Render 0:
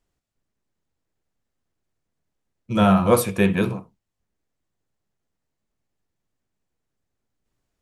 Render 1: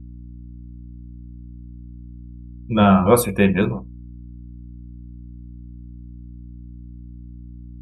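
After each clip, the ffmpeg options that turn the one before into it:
-af "afftdn=nr=23:nf=-38,aeval=exprs='val(0)+0.0112*(sin(2*PI*60*n/s)+sin(2*PI*2*60*n/s)/2+sin(2*PI*3*60*n/s)/3+sin(2*PI*4*60*n/s)/4+sin(2*PI*5*60*n/s)/5)':c=same,volume=2.5dB"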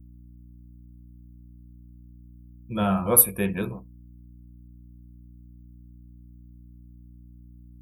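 -af "aexciter=amount=13.3:drive=7.9:freq=9.6k,volume=-10dB"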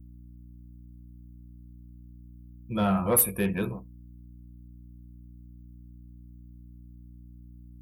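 -af "asoftclip=type=tanh:threshold=-15.5dB"

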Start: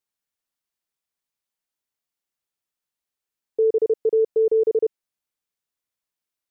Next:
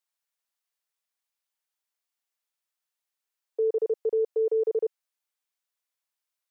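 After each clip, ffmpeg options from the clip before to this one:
-af "highpass=590"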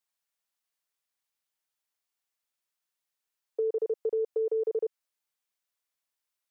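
-af "acompressor=threshold=-26dB:ratio=6"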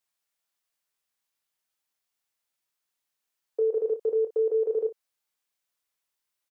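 -af "aecho=1:1:25|58:0.422|0.178,volume=2dB"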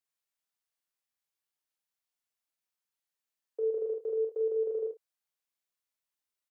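-filter_complex "[0:a]asplit=2[a][b];[b]adelay=45,volume=-4.5dB[c];[a][c]amix=inputs=2:normalize=0,volume=-8.5dB"

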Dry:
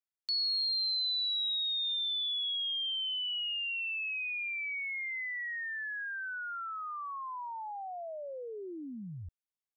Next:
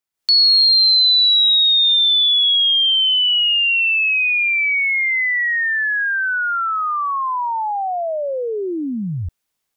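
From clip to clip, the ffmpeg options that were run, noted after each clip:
-af "dynaudnorm=f=130:g=3:m=11.5dB,volume=7.5dB"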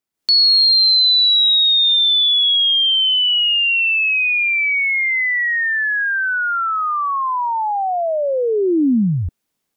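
-af "equalizer=f=250:t=o:w=2:g=9"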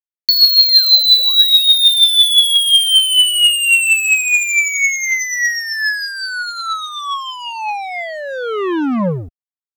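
-af "acrusher=bits=2:mix=0:aa=0.5,aphaser=in_gain=1:out_gain=1:delay=2:decay=0.55:speed=0.39:type=triangular"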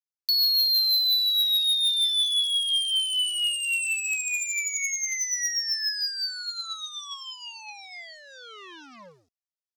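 -af "bandpass=f=5.3k:t=q:w=2.8:csg=0,asoftclip=type=tanh:threshold=-20dB"

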